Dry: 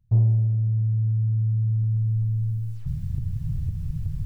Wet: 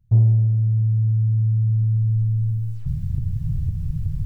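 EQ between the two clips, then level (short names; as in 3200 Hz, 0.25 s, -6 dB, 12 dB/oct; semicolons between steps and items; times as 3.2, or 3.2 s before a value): low shelf 440 Hz +4 dB; 0.0 dB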